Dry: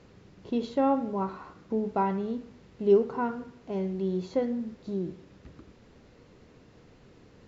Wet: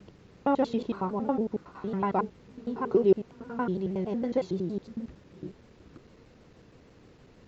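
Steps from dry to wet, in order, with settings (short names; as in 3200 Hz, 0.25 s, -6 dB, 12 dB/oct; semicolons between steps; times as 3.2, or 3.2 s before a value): slices in reverse order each 92 ms, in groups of 5; shaped vibrato saw down 6.4 Hz, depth 100 cents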